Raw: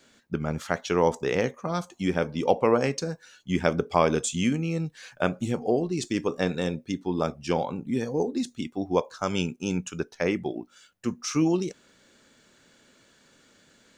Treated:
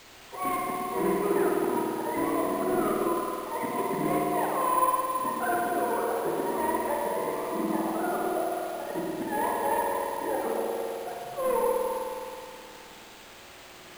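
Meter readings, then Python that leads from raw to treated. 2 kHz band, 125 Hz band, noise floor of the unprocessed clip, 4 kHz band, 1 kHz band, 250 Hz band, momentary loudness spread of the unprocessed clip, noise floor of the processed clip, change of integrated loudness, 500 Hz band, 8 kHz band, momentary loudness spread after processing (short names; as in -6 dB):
-2.0 dB, -12.5 dB, -61 dBFS, -6.5 dB, +5.0 dB, -4.0 dB, 9 LU, -48 dBFS, -1.0 dB, -1.0 dB, -3.0 dB, 15 LU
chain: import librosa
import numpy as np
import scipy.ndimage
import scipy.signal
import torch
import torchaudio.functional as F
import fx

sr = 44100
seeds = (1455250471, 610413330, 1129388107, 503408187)

p1 = fx.octave_mirror(x, sr, pivot_hz=410.0)
p2 = scipy.signal.sosfilt(scipy.signal.butter(4, 240.0, 'highpass', fs=sr, output='sos'), p1)
p3 = fx.dynamic_eq(p2, sr, hz=410.0, q=0.72, threshold_db=-37.0, ratio=4.0, max_db=-6)
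p4 = fx.auto_swell(p3, sr, attack_ms=159.0)
p5 = fx.over_compress(p4, sr, threshold_db=-34.0, ratio=-1.0)
p6 = p4 + F.gain(torch.from_numpy(p5), -2.0).numpy()
p7 = fx.dmg_noise_colour(p6, sr, seeds[0], colour='white', level_db=-46.0)
p8 = np.clip(10.0 ** (25.0 / 20.0) * p7, -1.0, 1.0) / 10.0 ** (25.0 / 20.0)
p9 = fx.echo_stepped(p8, sr, ms=114, hz=310.0, octaves=0.7, feedback_pct=70, wet_db=-3.0)
p10 = fx.rev_spring(p9, sr, rt60_s=2.5, pass_ms=(52,), chirp_ms=60, drr_db=-2.0)
y = np.repeat(scipy.signal.resample_poly(p10, 1, 4), 4)[:len(p10)]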